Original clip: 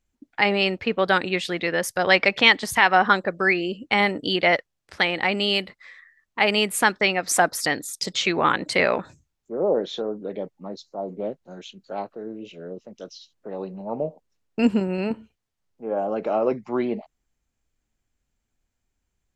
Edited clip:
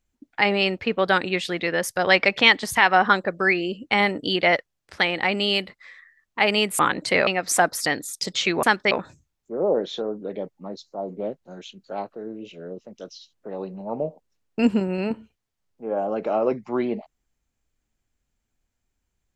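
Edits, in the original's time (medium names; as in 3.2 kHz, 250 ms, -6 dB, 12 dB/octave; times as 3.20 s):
6.79–7.07 s: swap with 8.43–8.91 s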